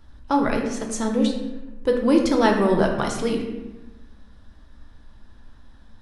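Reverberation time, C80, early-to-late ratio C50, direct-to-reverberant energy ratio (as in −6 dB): 1.1 s, 7.0 dB, 5.0 dB, 1.0 dB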